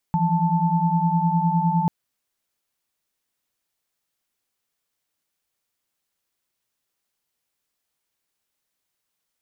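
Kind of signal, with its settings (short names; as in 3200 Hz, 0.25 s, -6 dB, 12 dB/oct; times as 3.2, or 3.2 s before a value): chord E3/F3/A5 sine, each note -22 dBFS 1.74 s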